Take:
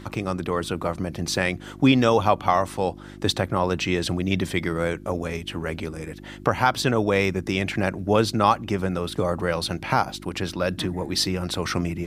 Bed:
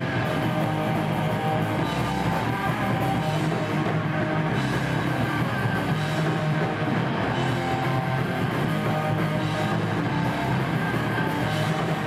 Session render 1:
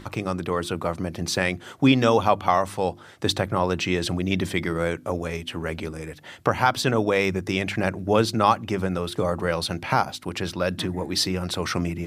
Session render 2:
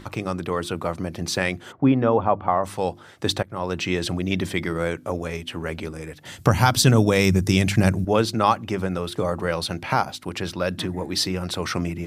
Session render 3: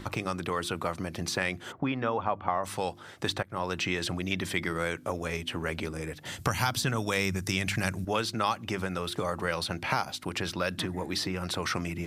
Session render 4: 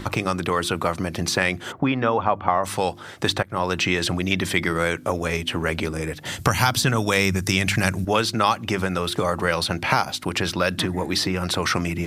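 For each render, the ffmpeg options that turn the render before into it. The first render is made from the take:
ffmpeg -i in.wav -af "bandreject=frequency=50:width_type=h:width=4,bandreject=frequency=100:width_type=h:width=4,bandreject=frequency=150:width_type=h:width=4,bandreject=frequency=200:width_type=h:width=4,bandreject=frequency=250:width_type=h:width=4,bandreject=frequency=300:width_type=h:width=4,bandreject=frequency=350:width_type=h:width=4" out.wav
ffmpeg -i in.wav -filter_complex "[0:a]asplit=3[link_01][link_02][link_03];[link_01]afade=type=out:start_time=1.71:duration=0.02[link_04];[link_02]lowpass=1300,afade=type=in:start_time=1.71:duration=0.02,afade=type=out:start_time=2.63:duration=0.02[link_05];[link_03]afade=type=in:start_time=2.63:duration=0.02[link_06];[link_04][link_05][link_06]amix=inputs=3:normalize=0,asettb=1/sr,asplit=3[link_07][link_08][link_09];[link_07]atrim=end=6.254[link_10];[link_08]atrim=start=6.25:end=8.05,asetpts=PTS-STARTPTS,afade=type=in:duration=0.004:curve=qsin,afade=type=out:start_time=1.796:duration=0.004:curve=qsin,bass=frequency=250:gain=12,treble=frequency=4000:gain=12[link_11];[link_09]atrim=start=8.046[link_12];[link_10][link_11]acrossfade=duration=0.004:curve1=hsin:curve2=qsin[link_13];[link_13][link_12]acrossfade=duration=0.004:curve1=qsin:curve2=hsin,asplit=2[link_14][link_15];[link_14]atrim=end=3.43,asetpts=PTS-STARTPTS,afade=type=out:start_time=3.426:duration=0.004:curve=hsin:silence=0.0707946[link_16];[link_15]atrim=start=3.43,asetpts=PTS-STARTPTS,afade=type=in:duration=0.53:curve=qsin:silence=0.0707946[link_17];[link_16][link_17]concat=n=2:v=0:a=1" out.wav
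ffmpeg -i in.wav -filter_complex "[0:a]acrossover=split=1000|2200[link_01][link_02][link_03];[link_01]acompressor=threshold=-31dB:ratio=4[link_04];[link_02]acompressor=threshold=-31dB:ratio=4[link_05];[link_03]acompressor=threshold=-33dB:ratio=4[link_06];[link_04][link_05][link_06]amix=inputs=3:normalize=0" out.wav
ffmpeg -i in.wav -af "volume=8.5dB" out.wav

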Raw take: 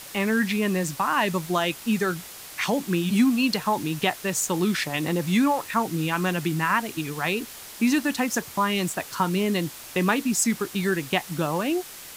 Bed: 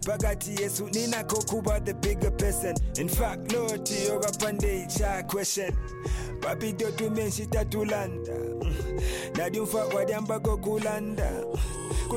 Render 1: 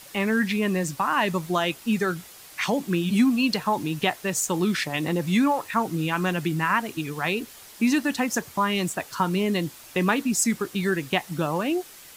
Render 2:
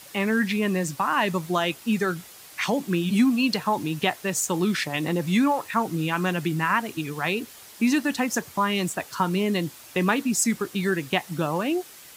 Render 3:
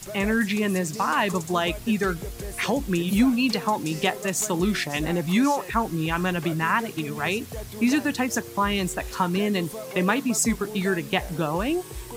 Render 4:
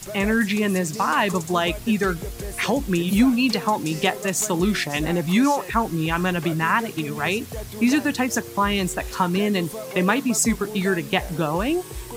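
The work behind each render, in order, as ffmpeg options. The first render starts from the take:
ffmpeg -i in.wav -af "afftdn=noise_reduction=6:noise_floor=-42" out.wav
ffmpeg -i in.wav -af "highpass=58" out.wav
ffmpeg -i in.wav -i bed.wav -filter_complex "[1:a]volume=-8.5dB[link_01];[0:a][link_01]amix=inputs=2:normalize=0" out.wav
ffmpeg -i in.wav -af "volume=2.5dB" out.wav

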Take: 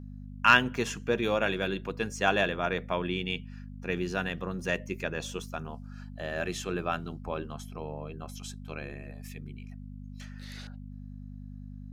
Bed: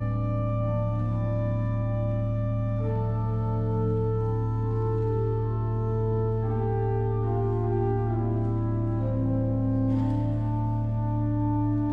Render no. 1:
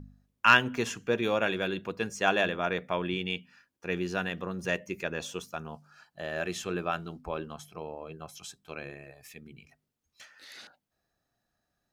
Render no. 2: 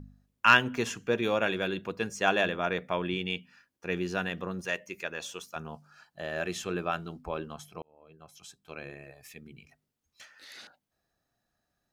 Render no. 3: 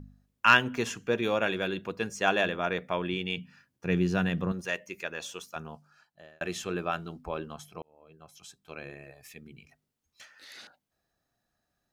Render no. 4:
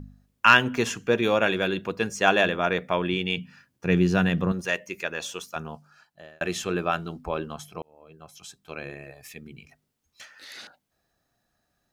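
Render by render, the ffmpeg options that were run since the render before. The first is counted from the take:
ffmpeg -i in.wav -af "bandreject=frequency=50:width_type=h:width=4,bandreject=frequency=100:width_type=h:width=4,bandreject=frequency=150:width_type=h:width=4,bandreject=frequency=200:width_type=h:width=4,bandreject=frequency=250:width_type=h:width=4" out.wav
ffmpeg -i in.wav -filter_complex "[0:a]asettb=1/sr,asplit=3[link_01][link_02][link_03];[link_01]atrim=end=4.614[link_04];[link_02]atrim=start=4.61:end=5.56,asetpts=PTS-STARTPTS,afade=type=in:duration=0.004:curve=qsin,afade=type=out:start_time=0.946:duration=0.004:curve=qsin,lowshelf=frequency=410:gain=-11.5[link_05];[link_03]atrim=start=5.556[link_06];[link_04][link_05]acrossfade=duration=0.004:curve1=hsin:curve2=qsin[link_07];[link_07][link_06]acrossfade=duration=0.004:curve1=qsin:curve2=hsin,asplit=2[link_08][link_09];[link_08]atrim=end=7.82,asetpts=PTS-STARTPTS,afade=type=out:start_time=7.816:duration=0.004:curve=hsin[link_10];[link_09]atrim=start=7.82,asetpts=PTS-STARTPTS,afade=type=in:duration=1.19[link_11];[link_10][link_11]concat=n=2:v=0:a=1" out.wav
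ffmpeg -i in.wav -filter_complex "[0:a]asettb=1/sr,asplit=3[link_01][link_02][link_03];[link_01]atrim=end=3.374[link_04];[link_02]atrim=start=3.37:end=4.52,asetpts=PTS-STARTPTS,afade=type=in:duration=0.004:curve=qsin,afade=type=out:start_time=1.146:duration=0.004:curve=qsin,equalizer=frequency=130:width_type=o:width=1.6:gain=13.5[link_05];[link_03]atrim=start=4.516[link_06];[link_04][link_05]acrossfade=duration=0.004:curve1=hsin:curve2=qsin[link_07];[link_07][link_06]acrossfade=duration=0.004:curve1=qsin:curve2=hsin,asplit=2[link_08][link_09];[link_08]atrim=end=6.41,asetpts=PTS-STARTPTS,afade=type=out:start_time=5.56:duration=0.85[link_10];[link_09]atrim=start=6.41,asetpts=PTS-STARTPTS,afade=type=in:duration=0.004:curve=hsin[link_11];[link_10][link_11]concat=n=2:v=0:a=1" out.wav
ffmpeg -i in.wav -af "volume=5.5dB,alimiter=limit=-3dB:level=0:latency=1" out.wav

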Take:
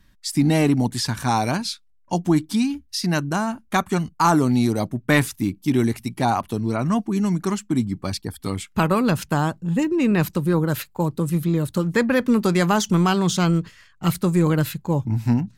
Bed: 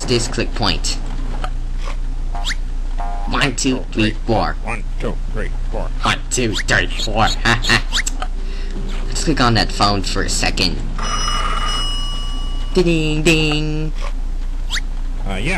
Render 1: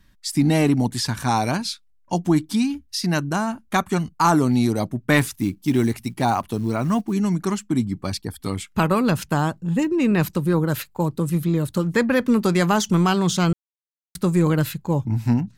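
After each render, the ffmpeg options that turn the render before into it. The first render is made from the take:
ffmpeg -i in.wav -filter_complex "[0:a]asettb=1/sr,asplit=3[link_01][link_02][link_03];[link_01]atrim=end=5.164[link_04];[link_02]atrim=start=5.16:end=7.14,asetpts=PTS-STARTPTS,afade=type=in:duration=0.004:curve=qsin,afade=type=out:start_time=1.976:duration=0.004:curve=qsin,acrusher=bits=8:mode=log:mix=0:aa=0.000001[link_05];[link_03]atrim=start=7.136[link_06];[link_04][link_05]acrossfade=duration=0.004:curve1=hsin:curve2=qsin[link_07];[link_07][link_06]acrossfade=duration=0.004:curve1=qsin:curve2=hsin,asplit=3[link_08][link_09][link_10];[link_08]atrim=end=13.53,asetpts=PTS-STARTPTS,afade=type=out:start_time=13.526:duration=0.004:curve=hsin[link_11];[link_09]atrim=start=13.53:end=14.15,asetpts=PTS-STARTPTS,volume=0[link_12];[link_10]atrim=start=14.15,asetpts=PTS-STARTPTS,afade=type=in:duration=0.004:curve=hsin[link_13];[link_11][link_12][link_13]concat=n=3:v=0:a=1" out.wav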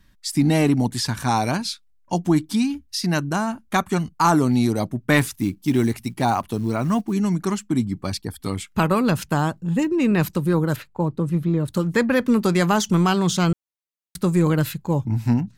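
ffmpeg -i in.wav -filter_complex "[0:a]asettb=1/sr,asplit=3[link_01][link_02][link_03];[link_01]atrim=end=10.764[link_04];[link_02]atrim=start=10.76:end=11.68,asetpts=PTS-STARTPTS,afade=type=in:duration=0.004:curve=qsin,afade=type=out:start_time=0.916:duration=0.004:curve=qsin,lowpass=frequency=1600:poles=1[link_05];[link_03]atrim=start=11.676[link_06];[link_04][link_05]acrossfade=duration=0.004:curve1=hsin:curve2=qsin[link_07];[link_07][link_06]acrossfade=duration=0.004:curve1=qsin:curve2=hsin" out.wav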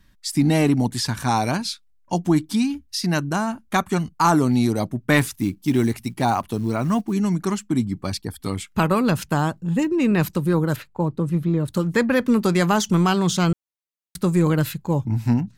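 ffmpeg -i in.wav -af anull out.wav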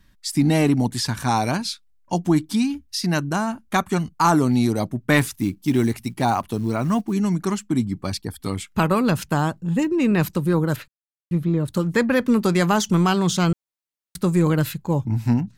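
ffmpeg -i in.wav -filter_complex "[0:a]asplit=3[link_01][link_02][link_03];[link_01]atrim=end=10.88,asetpts=PTS-STARTPTS,afade=type=out:start_time=10.876:duration=0.004:curve=hsin[link_04];[link_02]atrim=start=10.88:end=11.31,asetpts=PTS-STARTPTS,volume=0[link_05];[link_03]atrim=start=11.31,asetpts=PTS-STARTPTS,afade=type=in:duration=0.004:curve=hsin[link_06];[link_04][link_05][link_06]concat=n=3:v=0:a=1" out.wav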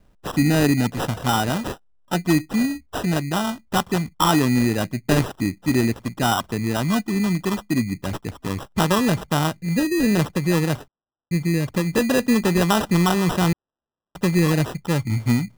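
ffmpeg -i in.wav -af "acrusher=samples=20:mix=1:aa=0.000001" out.wav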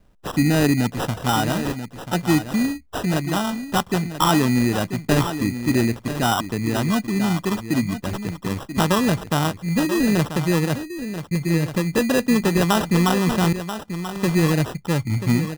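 ffmpeg -i in.wav -af "aecho=1:1:986:0.299" out.wav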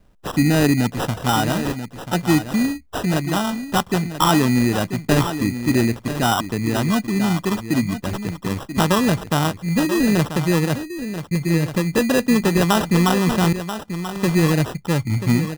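ffmpeg -i in.wav -af "volume=1.5dB" out.wav

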